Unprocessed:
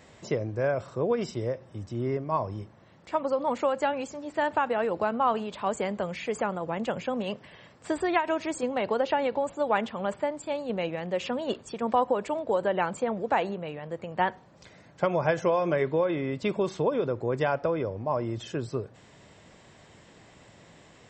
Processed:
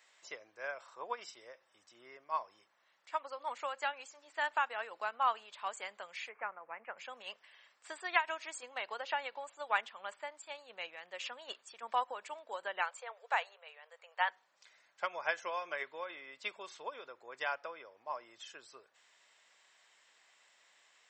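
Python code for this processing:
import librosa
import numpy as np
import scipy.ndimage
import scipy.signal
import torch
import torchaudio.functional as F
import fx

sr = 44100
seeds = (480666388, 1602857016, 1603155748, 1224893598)

y = fx.peak_eq(x, sr, hz=920.0, db=8.5, octaves=0.63, at=(0.79, 1.2))
y = fx.ellip_lowpass(y, sr, hz=2400.0, order=4, stop_db=40, at=(6.29, 6.98))
y = fx.brickwall_highpass(y, sr, low_hz=410.0, at=(12.83, 14.3))
y = scipy.signal.sosfilt(scipy.signal.butter(2, 1300.0, 'highpass', fs=sr, output='sos'), y)
y = fx.upward_expand(y, sr, threshold_db=-45.0, expansion=1.5)
y = F.gain(torch.from_numpy(y), 1.5).numpy()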